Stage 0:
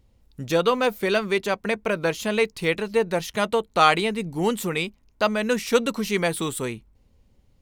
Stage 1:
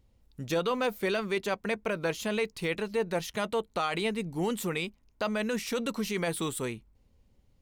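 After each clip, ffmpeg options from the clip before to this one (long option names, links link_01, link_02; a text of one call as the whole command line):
ffmpeg -i in.wav -af "alimiter=limit=-15dB:level=0:latency=1:release=17,volume=-5dB" out.wav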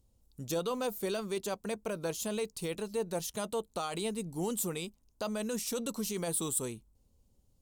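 ffmpeg -i in.wav -af "equalizer=frequency=2000:width_type=o:width=1:gain=-11,equalizer=frequency=8000:width_type=o:width=1:gain=7,equalizer=frequency=16000:width_type=o:width=1:gain=9,volume=-4dB" out.wav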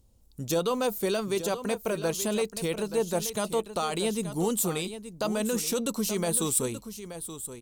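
ffmpeg -i in.wav -af "aecho=1:1:878:0.266,volume=6.5dB" out.wav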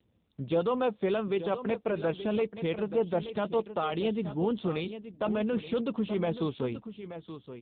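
ffmpeg -i in.wav -ar 8000 -c:a libopencore_amrnb -b:a 7400 out.amr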